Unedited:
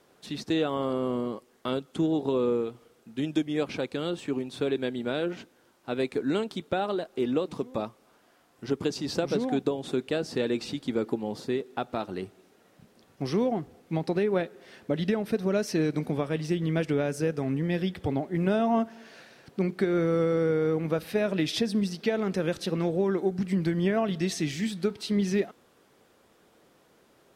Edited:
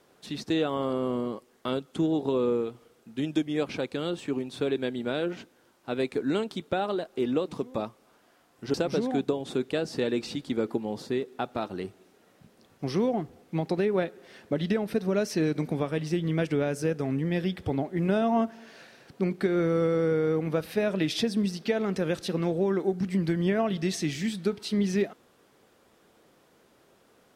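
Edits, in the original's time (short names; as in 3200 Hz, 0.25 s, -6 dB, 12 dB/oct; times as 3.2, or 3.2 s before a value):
8.74–9.12 cut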